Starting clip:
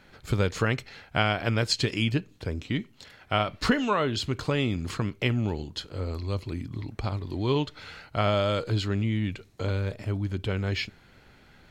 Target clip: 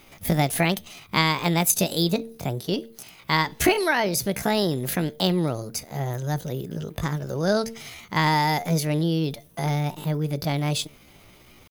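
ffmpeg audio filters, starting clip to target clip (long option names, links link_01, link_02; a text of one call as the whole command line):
ffmpeg -i in.wav -af "aexciter=amount=4.7:drive=7.1:freq=6700,bandreject=frequency=151.5:width_type=h:width=4,bandreject=frequency=303:width_type=h:width=4,asetrate=66075,aresample=44100,atempo=0.66742,volume=3.5dB" out.wav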